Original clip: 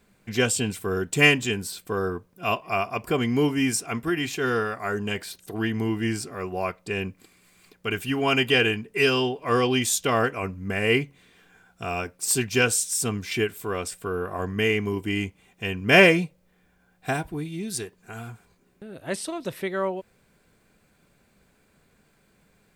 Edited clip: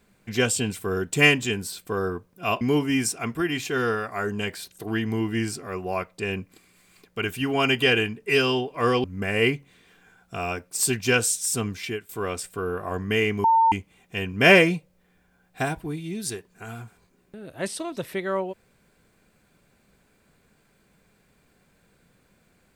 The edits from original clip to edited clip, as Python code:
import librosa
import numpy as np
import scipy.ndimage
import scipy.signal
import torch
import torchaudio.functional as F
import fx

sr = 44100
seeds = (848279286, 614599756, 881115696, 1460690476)

y = fx.edit(x, sr, fx.cut(start_s=2.61, length_s=0.68),
    fx.cut(start_s=9.72, length_s=0.8),
    fx.fade_out_to(start_s=13.17, length_s=0.4, floor_db=-15.5),
    fx.bleep(start_s=14.92, length_s=0.28, hz=904.0, db=-14.5), tone=tone)